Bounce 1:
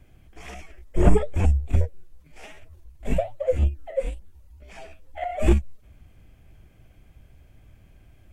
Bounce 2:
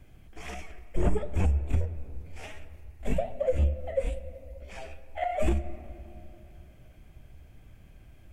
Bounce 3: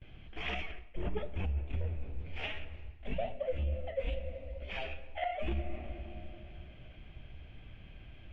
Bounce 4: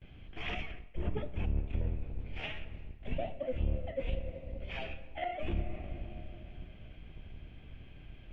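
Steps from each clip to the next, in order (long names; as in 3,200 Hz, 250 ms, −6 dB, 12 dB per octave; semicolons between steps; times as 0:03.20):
downward compressor 4 to 1, threshold −22 dBFS, peak gain reduction 11.5 dB; on a send at −12 dB: convolution reverb RT60 2.9 s, pre-delay 4 ms
noise gate with hold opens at −47 dBFS; reversed playback; downward compressor 6 to 1, threshold −32 dBFS, peak gain reduction 13 dB; reversed playback; transistor ladder low-pass 3,500 Hz, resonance 55%; level +11 dB
sub-octave generator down 1 octave, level +2 dB; level −1.5 dB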